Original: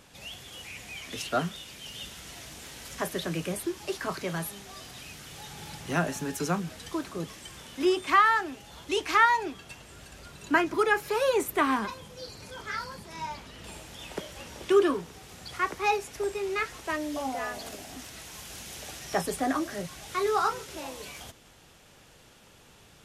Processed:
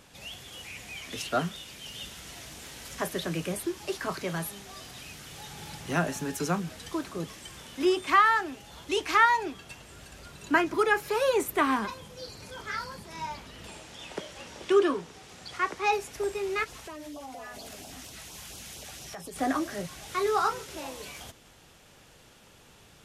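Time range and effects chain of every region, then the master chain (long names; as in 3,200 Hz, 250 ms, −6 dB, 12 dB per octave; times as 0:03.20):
0:13.67–0:15.93: low-pass filter 8,600 Hz + low-shelf EQ 110 Hz −9 dB
0:16.64–0:19.36: auto-filter notch sine 4.3 Hz 310–2,000 Hz + downward compressor 5 to 1, threshold −39 dBFS
whole clip: no processing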